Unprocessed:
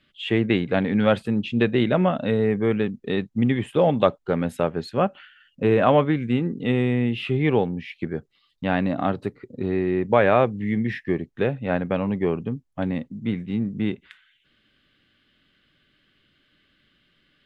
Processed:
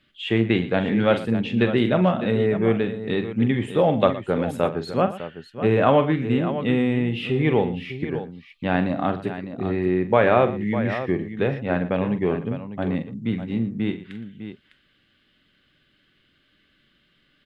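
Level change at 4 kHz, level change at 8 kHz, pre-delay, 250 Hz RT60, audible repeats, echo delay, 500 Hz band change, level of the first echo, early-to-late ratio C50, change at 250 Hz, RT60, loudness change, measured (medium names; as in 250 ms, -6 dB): +1.0 dB, no reading, no reverb, no reverb, 3, 44 ms, +0.5 dB, -10.0 dB, no reverb, +0.5 dB, no reverb, +0.5 dB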